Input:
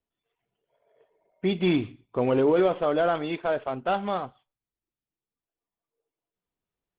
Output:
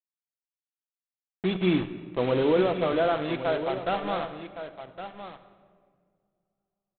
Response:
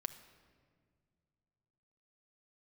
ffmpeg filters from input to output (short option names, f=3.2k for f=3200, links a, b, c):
-filter_complex "[0:a]aresample=8000,acrusher=bits=4:mix=0:aa=0.5,aresample=44100,aecho=1:1:1113:0.282[a];[1:a]atrim=start_sample=2205[b];[a][b]afir=irnorm=-1:irlink=0"